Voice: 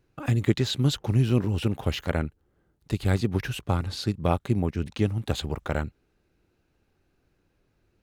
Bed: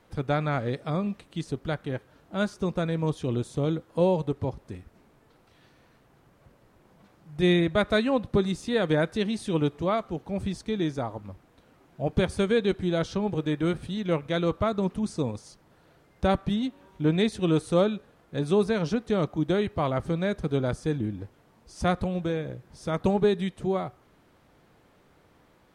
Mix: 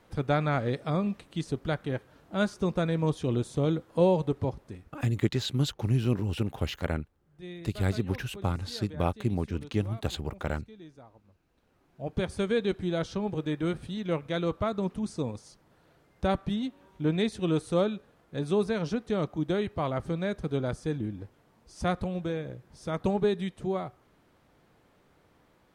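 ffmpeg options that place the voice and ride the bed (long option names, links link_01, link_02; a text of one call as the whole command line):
ffmpeg -i stem1.wav -i stem2.wav -filter_complex "[0:a]adelay=4750,volume=-4dB[link_01];[1:a]volume=17.5dB,afade=type=out:start_time=4.44:duration=0.79:silence=0.0891251,afade=type=in:start_time=11.37:duration=1.16:silence=0.133352[link_02];[link_01][link_02]amix=inputs=2:normalize=0" out.wav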